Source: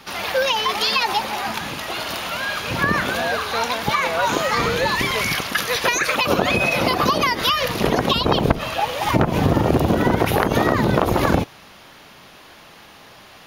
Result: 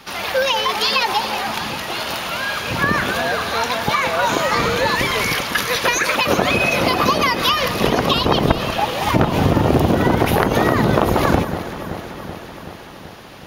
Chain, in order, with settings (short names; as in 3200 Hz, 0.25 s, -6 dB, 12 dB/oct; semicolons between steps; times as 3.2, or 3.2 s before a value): echo with dull and thin repeats by turns 0.19 s, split 1600 Hz, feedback 82%, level -10.5 dB; gain +1.5 dB